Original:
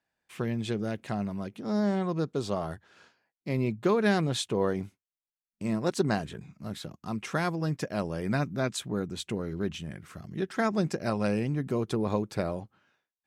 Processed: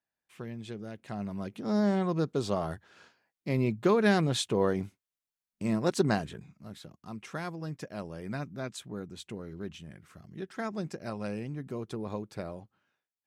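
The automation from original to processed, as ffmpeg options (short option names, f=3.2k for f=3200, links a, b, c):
-af "volume=0.5dB,afade=t=in:st=1:d=0.57:silence=0.316228,afade=t=out:st=6.1:d=0.54:silence=0.375837"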